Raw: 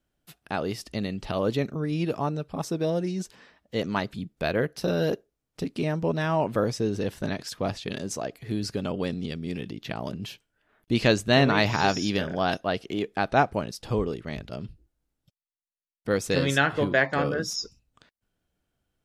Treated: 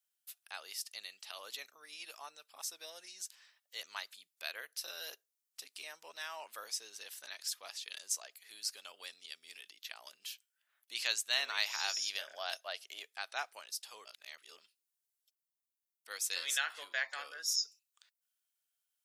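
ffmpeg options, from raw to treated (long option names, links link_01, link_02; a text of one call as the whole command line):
ffmpeg -i in.wav -filter_complex "[0:a]asettb=1/sr,asplit=3[link_01][link_02][link_03];[link_01]atrim=end=11.974[link_04];[link_02]atrim=start=11.97:end=13.05,asetpts=PTS-STARTPTS,afade=type=in:duration=0.004:curve=qsin,afade=type=out:start_time=1.076:duration=0.004:curve=qsin,equalizer=frequency=610:width=2.9:gain=9[link_05];[link_03]atrim=start=13.046[link_06];[link_04][link_05]acrossfade=duration=0.004:curve1=hsin:curve2=qsin[link_07];[link_07][link_06]acrossfade=duration=0.004:curve1=qsin:curve2=hsin,asplit=3[link_08][link_09][link_10];[link_08]atrim=end=14.052[link_11];[link_09]atrim=start=14.048:end=14.582,asetpts=PTS-STARTPTS,areverse[link_12];[link_10]atrim=start=14.578[link_13];[link_11][link_12]acrossfade=duration=0.004:curve1=hsin:curve2=hsin[link_14];[link_14][link_13]acrossfade=duration=0.004:curve1=hsin:curve2=hsin,highpass=770,aderivative,volume=1dB" out.wav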